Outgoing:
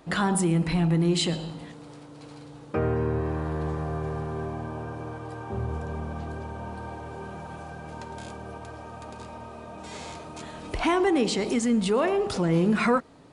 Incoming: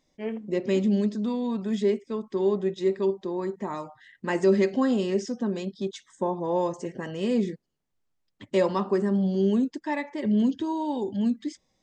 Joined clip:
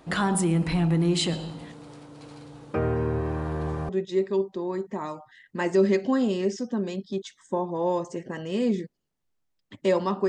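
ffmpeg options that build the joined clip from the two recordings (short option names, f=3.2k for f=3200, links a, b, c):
-filter_complex "[0:a]apad=whole_dur=10.28,atrim=end=10.28,atrim=end=3.892[a];[1:a]atrim=start=2.578:end=8.97[b];[a][b]acrossfade=d=0.004:c1=hsin:c2=hsin"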